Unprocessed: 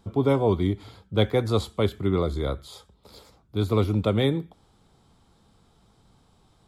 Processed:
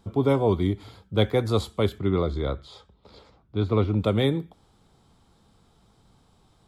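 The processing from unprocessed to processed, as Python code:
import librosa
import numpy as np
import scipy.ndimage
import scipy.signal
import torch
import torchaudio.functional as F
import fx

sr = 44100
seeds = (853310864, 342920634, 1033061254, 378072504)

y = fx.lowpass(x, sr, hz=fx.line((1.98, 5400.0), (3.99, 3000.0)), slope=12, at=(1.98, 3.99), fade=0.02)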